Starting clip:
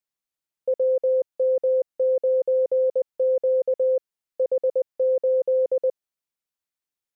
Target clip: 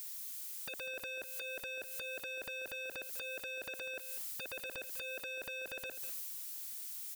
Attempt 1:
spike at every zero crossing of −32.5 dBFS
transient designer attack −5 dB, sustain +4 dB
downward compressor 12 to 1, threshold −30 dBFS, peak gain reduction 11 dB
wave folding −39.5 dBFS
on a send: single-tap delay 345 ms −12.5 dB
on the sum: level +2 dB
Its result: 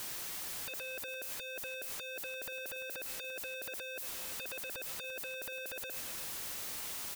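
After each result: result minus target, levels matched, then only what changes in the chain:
echo 147 ms late; spike at every zero crossing: distortion +9 dB
change: single-tap delay 198 ms −12.5 dB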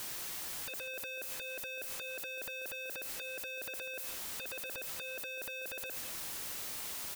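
spike at every zero crossing: distortion +9 dB
change: spike at every zero crossing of −42 dBFS

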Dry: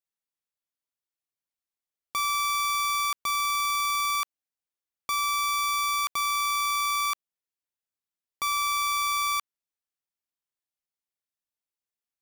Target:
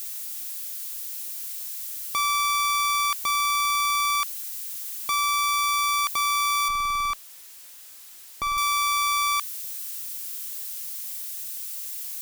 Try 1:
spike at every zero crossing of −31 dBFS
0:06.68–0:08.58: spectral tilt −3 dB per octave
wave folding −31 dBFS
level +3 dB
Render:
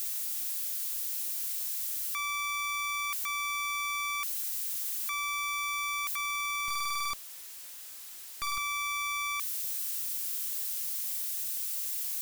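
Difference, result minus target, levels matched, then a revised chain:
wave folding: distortion +38 dB
spike at every zero crossing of −31 dBFS
0:06.68–0:08.58: spectral tilt −3 dB per octave
wave folding −20 dBFS
level +3 dB

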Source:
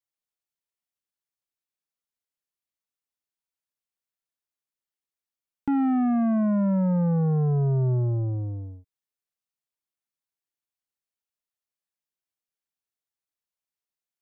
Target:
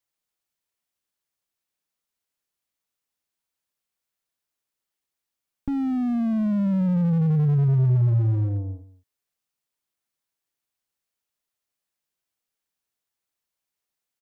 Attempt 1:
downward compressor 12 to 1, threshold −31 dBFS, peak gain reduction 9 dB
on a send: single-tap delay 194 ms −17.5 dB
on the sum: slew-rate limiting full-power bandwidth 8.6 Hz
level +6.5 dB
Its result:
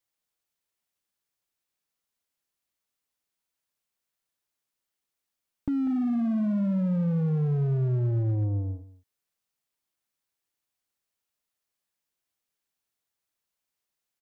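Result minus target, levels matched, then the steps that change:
downward compressor: peak gain reduction +9 dB
remove: downward compressor 12 to 1, threshold −31 dBFS, peak gain reduction 9 dB

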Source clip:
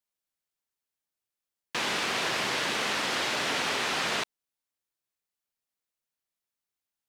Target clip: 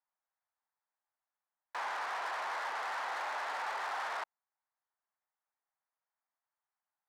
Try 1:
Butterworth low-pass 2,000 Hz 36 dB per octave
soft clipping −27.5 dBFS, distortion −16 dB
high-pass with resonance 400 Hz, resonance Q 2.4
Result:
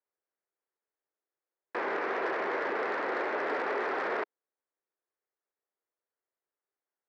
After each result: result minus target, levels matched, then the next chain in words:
500 Hz band +9.5 dB; soft clipping: distortion −10 dB
Butterworth low-pass 2,000 Hz 36 dB per octave
soft clipping −27.5 dBFS, distortion −16 dB
high-pass with resonance 830 Hz, resonance Q 2.4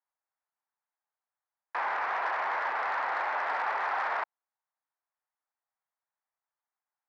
soft clipping: distortion −10 dB
Butterworth low-pass 2,000 Hz 36 dB per octave
soft clipping −39 dBFS, distortion −7 dB
high-pass with resonance 830 Hz, resonance Q 2.4

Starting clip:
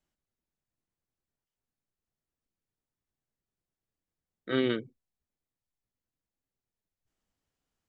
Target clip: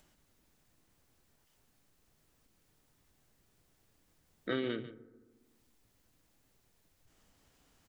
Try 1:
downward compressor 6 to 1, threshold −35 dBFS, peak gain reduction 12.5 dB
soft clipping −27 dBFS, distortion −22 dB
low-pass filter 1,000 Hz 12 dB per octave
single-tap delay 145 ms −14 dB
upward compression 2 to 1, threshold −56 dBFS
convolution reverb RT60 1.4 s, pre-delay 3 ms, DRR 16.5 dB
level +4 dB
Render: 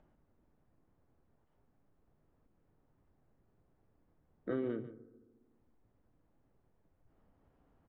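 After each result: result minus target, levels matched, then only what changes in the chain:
soft clipping: distortion +13 dB; 1,000 Hz band −4.0 dB
change: soft clipping −19.5 dBFS, distortion −34 dB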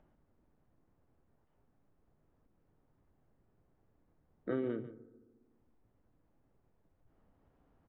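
1,000 Hz band −4.5 dB
remove: low-pass filter 1,000 Hz 12 dB per octave

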